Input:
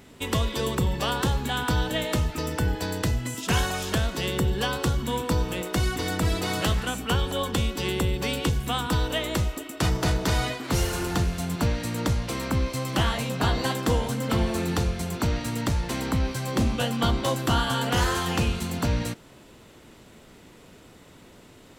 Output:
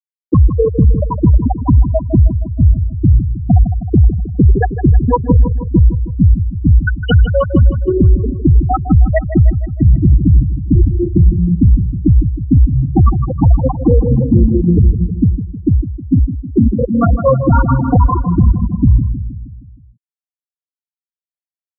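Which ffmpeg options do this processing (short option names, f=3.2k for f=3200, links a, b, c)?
-filter_complex "[0:a]asettb=1/sr,asplit=3[a][b][c];[a]atrim=end=15.134[d];[b]atrim=start=15.13:end=17.29,asetpts=PTS-STARTPTS,afade=t=in:d=0.004:c=qsin,afade=t=out:st=2.156:d=0.004:c=qsin,lowshelf=f=120:g=-7[e];[c]atrim=start=17.286[f];[d][e]acrossfade=d=0.004:c1=hsin:c2=qsin[g];[g][f]acrossfade=d=0.004:c1=qsin:c2=hsin,afftfilt=real='re*gte(hypot(re,im),0.316)':imag='im*gte(hypot(re,im),0.316)':win_size=1024:overlap=0.75,asplit=2[h][i];[i]adelay=157,lowpass=f=4.8k:p=1,volume=-11.5dB,asplit=2[j][k];[k]adelay=157,lowpass=f=4.8k:p=1,volume=0.54,asplit=2[l][m];[m]adelay=157,lowpass=f=4.8k:p=1,volume=0.54,asplit=2[n][o];[o]adelay=157,lowpass=f=4.8k:p=1,volume=0.54,asplit=2[p][q];[q]adelay=157,lowpass=f=4.8k:p=1,volume=0.54,asplit=2[r][s];[s]adelay=157,lowpass=f=4.8k:p=1,volume=0.54[t];[h][j][l][n][p][r][t]amix=inputs=7:normalize=0,alimiter=level_in=21dB:limit=-1dB:release=50:level=0:latency=1,volume=-1dB"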